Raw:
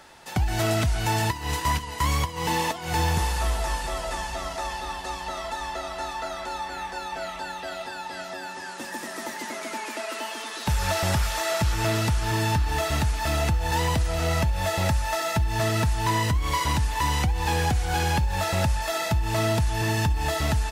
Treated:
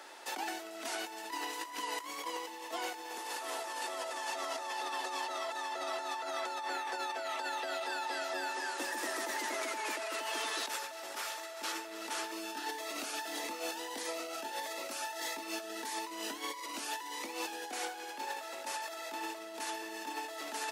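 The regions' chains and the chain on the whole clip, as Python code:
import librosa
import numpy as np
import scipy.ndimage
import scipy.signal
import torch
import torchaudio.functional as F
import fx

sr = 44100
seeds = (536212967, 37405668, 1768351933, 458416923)

y = fx.chain(x, sr, fx.notch(hz=7600.0, q=28.0),
    fx.notch_cascade(direction='rising', hz=1.6), at=(12.31, 17.71))
y = scipy.signal.sosfilt(scipy.signal.butter(8, 280.0, 'highpass', fs=sr, output='sos'), y)
y = fx.over_compress(y, sr, threshold_db=-35.0, ratio=-1.0)
y = y * librosa.db_to_amplitude(-5.0)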